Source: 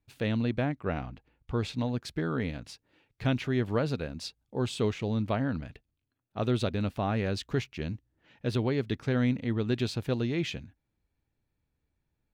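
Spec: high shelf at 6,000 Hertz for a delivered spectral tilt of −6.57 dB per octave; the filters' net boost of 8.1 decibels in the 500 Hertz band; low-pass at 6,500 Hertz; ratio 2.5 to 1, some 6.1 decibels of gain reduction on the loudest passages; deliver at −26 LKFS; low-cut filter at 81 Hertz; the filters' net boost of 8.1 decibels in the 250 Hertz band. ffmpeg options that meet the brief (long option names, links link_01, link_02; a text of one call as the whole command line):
ffmpeg -i in.wav -af "highpass=81,lowpass=6500,equalizer=frequency=250:width_type=o:gain=7.5,equalizer=frequency=500:width_type=o:gain=7.5,highshelf=frequency=6000:gain=7,acompressor=threshold=-25dB:ratio=2.5,volume=3.5dB" out.wav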